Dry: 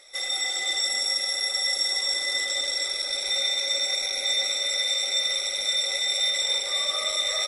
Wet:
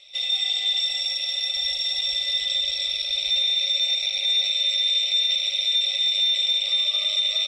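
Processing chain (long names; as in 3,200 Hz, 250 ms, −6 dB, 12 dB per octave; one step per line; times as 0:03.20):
drawn EQ curve 130 Hz 0 dB, 320 Hz −12 dB, 660 Hz −7 dB, 1,800 Hz −16 dB, 2,700 Hz +15 dB, 9,800 Hz −18 dB
brickwall limiter −14.5 dBFS, peak gain reduction 5.5 dB
0:01.55–0:03.66: parametric band 73 Hz +12.5 dB 1.5 octaves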